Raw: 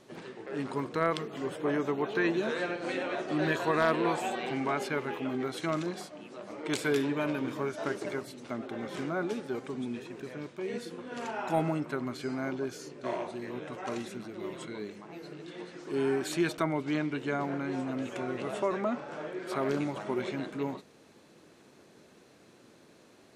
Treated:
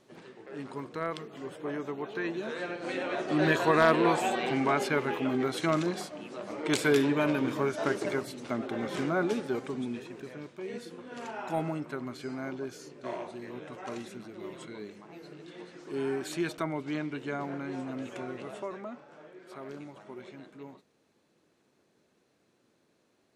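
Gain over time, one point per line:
2.37 s -5.5 dB
3.48 s +4 dB
9.4 s +4 dB
10.47 s -3 dB
18.2 s -3 dB
19.1 s -12.5 dB

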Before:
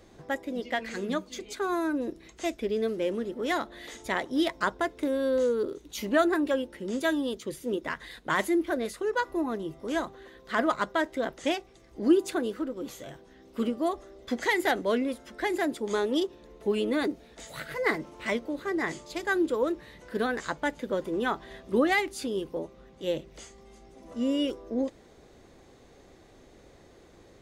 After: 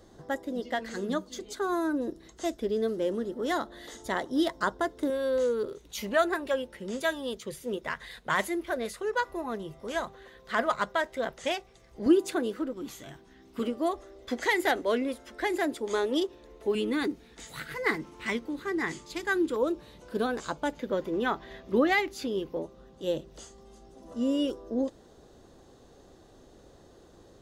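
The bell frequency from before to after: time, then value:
bell -13 dB 0.39 oct
2400 Hz
from 5.1 s 300 Hz
from 12.06 s 66 Hz
from 12.73 s 530 Hz
from 13.59 s 180 Hz
from 16.75 s 610 Hz
from 19.56 s 1900 Hz
from 20.73 s 9000 Hz
from 22.62 s 2200 Hz

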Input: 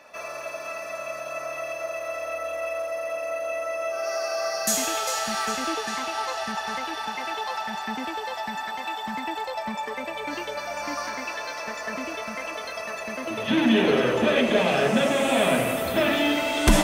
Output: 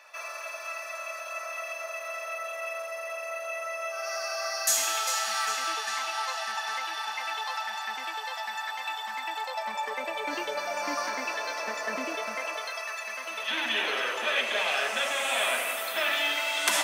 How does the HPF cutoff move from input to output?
9.24 s 1000 Hz
10.53 s 270 Hz
12.13 s 270 Hz
12.92 s 1100 Hz

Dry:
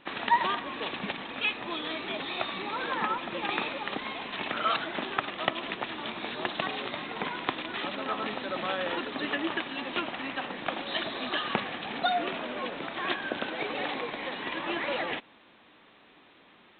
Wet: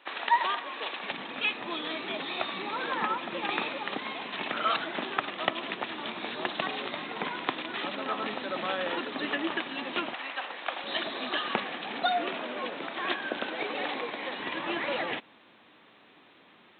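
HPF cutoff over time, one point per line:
480 Hz
from 1.11 s 150 Hz
from 10.14 s 590 Hz
from 10.84 s 210 Hz
from 14.4 s 83 Hz

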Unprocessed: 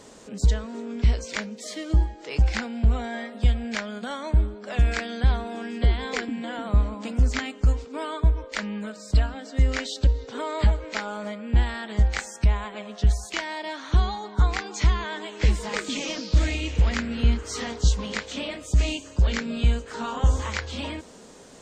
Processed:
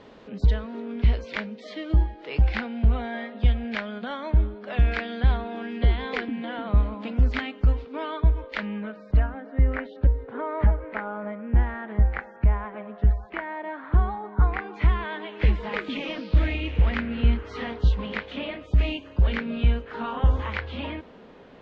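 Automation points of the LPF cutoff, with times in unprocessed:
LPF 24 dB/oct
8.52 s 3600 Hz
9.39 s 1900 Hz
14.34 s 1900 Hz
15.14 s 3100 Hz

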